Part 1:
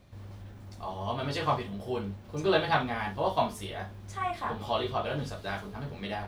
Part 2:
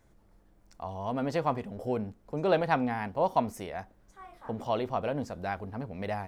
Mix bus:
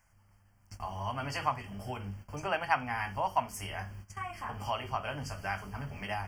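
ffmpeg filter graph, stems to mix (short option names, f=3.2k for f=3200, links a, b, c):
-filter_complex "[0:a]acompressor=threshold=-34dB:ratio=6,volume=3dB[a];[1:a]lowshelf=f=560:t=q:w=1.5:g=-10.5,volume=3dB,asplit=2[b][c];[c]apad=whole_len=276784[d];[a][d]sidechaingate=range=-21dB:threshold=-59dB:ratio=16:detection=peak[e];[e][b]amix=inputs=2:normalize=0,asuperstop=centerf=3800:order=20:qfactor=3,equalizer=f=440:w=0.54:g=-11"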